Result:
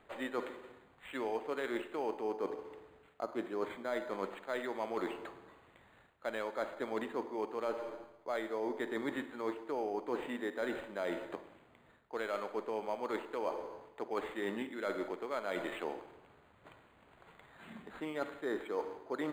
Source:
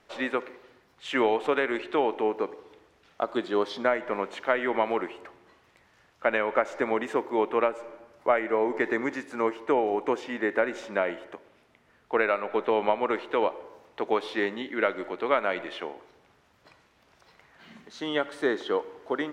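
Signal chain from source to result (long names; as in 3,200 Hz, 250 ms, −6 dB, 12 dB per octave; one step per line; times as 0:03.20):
reversed playback
downward compressor 12 to 1, threshold −33 dBFS, peak gain reduction 16.5 dB
reversed playback
spring reverb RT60 1 s, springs 45/53 ms, chirp 70 ms, DRR 12 dB
linearly interpolated sample-rate reduction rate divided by 8×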